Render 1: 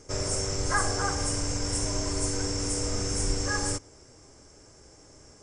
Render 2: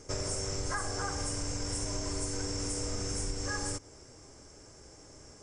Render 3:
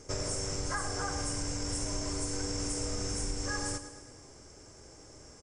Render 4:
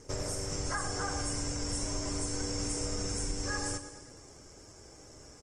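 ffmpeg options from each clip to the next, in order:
ffmpeg -i in.wav -af "acompressor=threshold=-31dB:ratio=6" out.wav
ffmpeg -i in.wav -af "aecho=1:1:107|214|321|428|535|642:0.251|0.141|0.0788|0.0441|0.0247|0.0138" out.wav
ffmpeg -i in.wav -ar 48000 -c:a libopus -b:a 20k out.opus

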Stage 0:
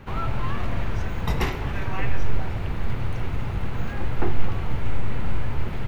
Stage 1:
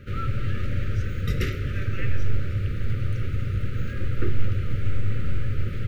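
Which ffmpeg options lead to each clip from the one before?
ffmpeg -i in.wav -af "equalizer=frequency=100:width_type=o:width=0.48:gain=9.5,afftfilt=real='re*(1-between(b*sr/4096,600,1200))':imag='im*(1-between(b*sr/4096,600,1200))':win_size=4096:overlap=0.75,volume=-2.5dB" out.wav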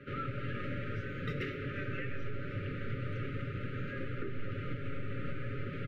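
ffmpeg -i in.wav -filter_complex "[0:a]acrossover=split=160 3300:gain=0.126 1 0.0891[link_01][link_02][link_03];[link_01][link_02][link_03]amix=inputs=3:normalize=0,aecho=1:1:7.2:0.53,alimiter=level_in=1.5dB:limit=-24dB:level=0:latency=1:release=267,volume=-1.5dB,volume=-2dB" out.wav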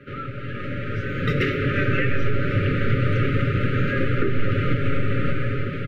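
ffmpeg -i in.wav -af "dynaudnorm=framelen=450:gausssize=5:maxgain=11.5dB,volume=5.5dB" out.wav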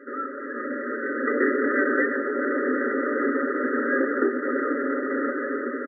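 ffmpeg -i in.wav -filter_complex "[0:a]asplit=5[link_01][link_02][link_03][link_04][link_05];[link_02]adelay=94,afreqshift=-71,volume=-23dB[link_06];[link_03]adelay=188,afreqshift=-142,volume=-27.3dB[link_07];[link_04]adelay=282,afreqshift=-213,volume=-31.6dB[link_08];[link_05]adelay=376,afreqshift=-284,volume=-35.9dB[link_09];[link_01][link_06][link_07][link_08][link_09]amix=inputs=5:normalize=0,acontrast=62,afftfilt=real='re*between(b*sr/4096,230,2000)':imag='im*between(b*sr/4096,230,2000)':win_size=4096:overlap=0.75,volume=-3dB" out.wav

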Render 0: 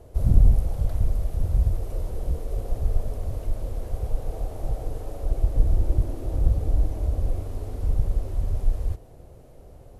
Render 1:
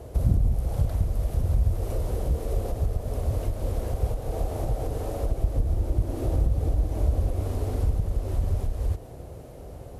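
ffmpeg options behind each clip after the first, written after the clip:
ffmpeg -i in.wav -af "acompressor=threshold=-25dB:ratio=3,highpass=45,volume=7.5dB" out.wav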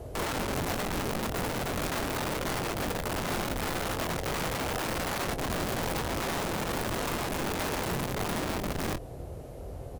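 ffmpeg -i in.wav -filter_complex "[0:a]acrossover=split=2900[link_01][link_02];[link_02]acompressor=threshold=-58dB:ratio=4:attack=1:release=60[link_03];[link_01][link_03]amix=inputs=2:normalize=0,aeval=exprs='(mod(22.4*val(0)+1,2)-1)/22.4':channel_layout=same,asplit=2[link_04][link_05];[link_05]adelay=23,volume=-10.5dB[link_06];[link_04][link_06]amix=inputs=2:normalize=0" out.wav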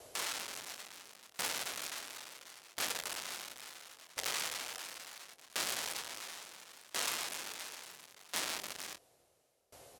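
ffmpeg -i in.wav -af "bandpass=frequency=6400:width_type=q:width=0.59:csg=0,aeval=exprs='val(0)*pow(10,-25*if(lt(mod(0.72*n/s,1),2*abs(0.72)/1000),1-mod(0.72*n/s,1)/(2*abs(0.72)/1000),(mod(0.72*n/s,1)-2*abs(0.72)/1000)/(1-2*abs(0.72)/1000))/20)':channel_layout=same,volume=6.5dB" out.wav

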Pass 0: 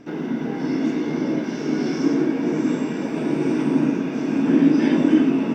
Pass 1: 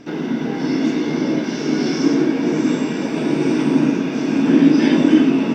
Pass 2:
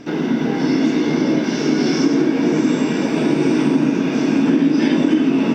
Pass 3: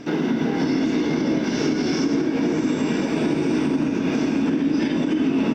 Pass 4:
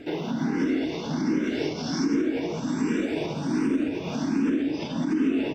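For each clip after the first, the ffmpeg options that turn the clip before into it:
ffmpeg -i in.wav -af "equalizer=frequency=4300:width_type=o:width=1.4:gain=6.5,volume=3.5dB" out.wav
ffmpeg -i in.wav -af "acompressor=threshold=-15dB:ratio=6,volume=3.5dB" out.wav
ffmpeg -i in.wav -filter_complex "[0:a]alimiter=limit=-13dB:level=0:latency=1:release=163,asplit=4[link_01][link_02][link_03][link_04];[link_02]adelay=211,afreqshift=-63,volume=-17dB[link_05];[link_03]adelay=422,afreqshift=-126,volume=-25dB[link_06];[link_04]adelay=633,afreqshift=-189,volume=-32.9dB[link_07];[link_01][link_05][link_06][link_07]amix=inputs=4:normalize=0" out.wav
ffmpeg -i in.wav -filter_complex "[0:a]asplit=2[link_01][link_02];[link_02]afreqshift=1.3[link_03];[link_01][link_03]amix=inputs=2:normalize=1,volume=-2dB" out.wav

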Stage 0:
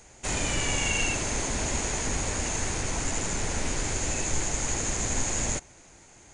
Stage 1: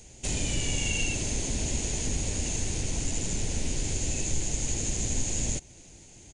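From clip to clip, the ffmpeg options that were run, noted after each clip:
ffmpeg -i in.wav -filter_complex "[0:a]firequalizer=gain_entry='entry(130,0);entry(1200,-18);entry(2800,-3)':delay=0.05:min_phase=1,asplit=2[link_01][link_02];[link_02]acompressor=threshold=-36dB:ratio=6,volume=2.5dB[link_03];[link_01][link_03]amix=inputs=2:normalize=0,volume=-2dB" out.wav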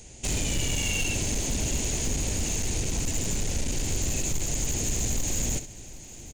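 ffmpeg -i in.wav -filter_complex "[0:a]asoftclip=type=hard:threshold=-26dB,asplit=2[link_01][link_02];[link_02]aecho=0:1:66|764:0.251|0.133[link_03];[link_01][link_03]amix=inputs=2:normalize=0,volume=3dB" out.wav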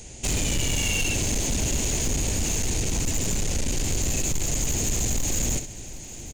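ffmpeg -i in.wav -af "asoftclip=type=tanh:threshold=-24dB,volume=5dB" out.wav

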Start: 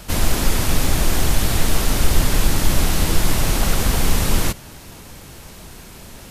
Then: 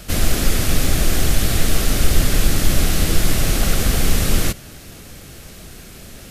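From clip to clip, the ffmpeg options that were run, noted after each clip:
ffmpeg -i in.wav -af "equalizer=frequency=940:width_type=o:width=0.36:gain=-11,volume=1dB" out.wav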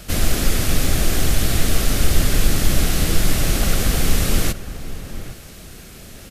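ffmpeg -i in.wav -filter_complex "[0:a]asplit=2[link_01][link_02];[link_02]adelay=816.3,volume=-13dB,highshelf=frequency=4000:gain=-18.4[link_03];[link_01][link_03]amix=inputs=2:normalize=0,volume=-1dB" out.wav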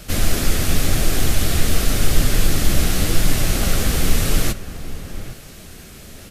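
ffmpeg -i in.wav -af "flanger=delay=6.4:depth=8.4:regen=-46:speed=0.92:shape=triangular,volume=4dB" out.wav

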